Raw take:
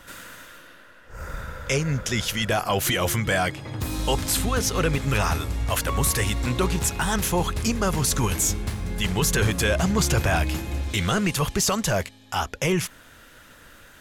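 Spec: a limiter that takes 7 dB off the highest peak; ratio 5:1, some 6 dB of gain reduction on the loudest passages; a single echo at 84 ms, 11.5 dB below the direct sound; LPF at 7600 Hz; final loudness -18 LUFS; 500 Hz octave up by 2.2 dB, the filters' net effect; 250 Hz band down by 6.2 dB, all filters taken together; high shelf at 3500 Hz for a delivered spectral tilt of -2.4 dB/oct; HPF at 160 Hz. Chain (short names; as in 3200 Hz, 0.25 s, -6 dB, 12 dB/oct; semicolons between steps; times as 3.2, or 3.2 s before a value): HPF 160 Hz; LPF 7600 Hz; bell 250 Hz -9 dB; bell 500 Hz +5 dB; high shelf 3500 Hz +6.5 dB; compressor 5:1, threshold -24 dBFS; limiter -18 dBFS; echo 84 ms -11.5 dB; gain +11 dB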